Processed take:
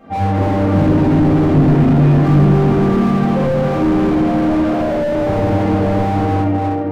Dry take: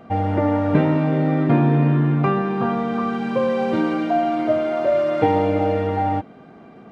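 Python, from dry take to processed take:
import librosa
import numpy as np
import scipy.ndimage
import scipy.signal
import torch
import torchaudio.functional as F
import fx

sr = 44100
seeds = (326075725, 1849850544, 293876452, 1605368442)

y = fx.room_shoebox(x, sr, seeds[0], volume_m3=220.0, walls='hard', distance_m=2.2)
y = fx.slew_limit(y, sr, full_power_hz=150.0)
y = y * 10.0 ** (-4.5 / 20.0)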